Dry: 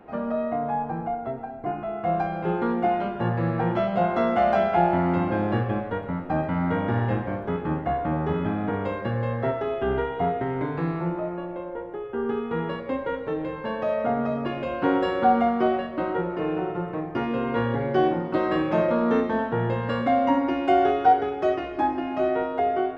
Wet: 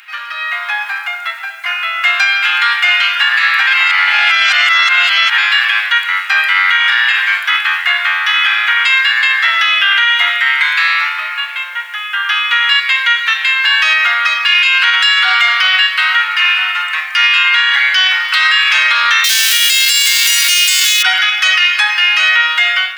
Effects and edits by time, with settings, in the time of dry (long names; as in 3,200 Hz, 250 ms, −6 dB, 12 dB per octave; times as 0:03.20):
0:03.67–0:05.38: reverse
0:19.24–0:21.01: spectral envelope flattened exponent 0.3
whole clip: Bessel high-pass filter 3,000 Hz, order 6; automatic gain control gain up to 8 dB; boost into a limiter +34 dB; level −1 dB